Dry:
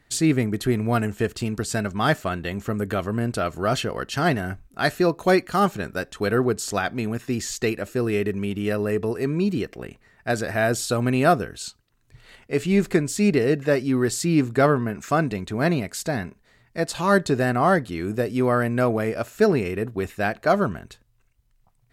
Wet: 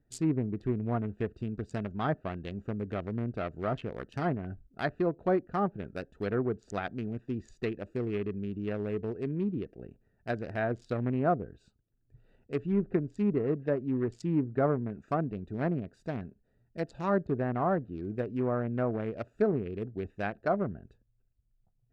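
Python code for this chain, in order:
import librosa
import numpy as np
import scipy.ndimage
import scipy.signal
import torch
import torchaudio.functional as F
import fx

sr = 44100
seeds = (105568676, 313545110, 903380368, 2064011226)

y = fx.wiener(x, sr, points=41)
y = fx.env_lowpass_down(y, sr, base_hz=1100.0, full_db=-16.5)
y = y * 10.0 ** (-8.0 / 20.0)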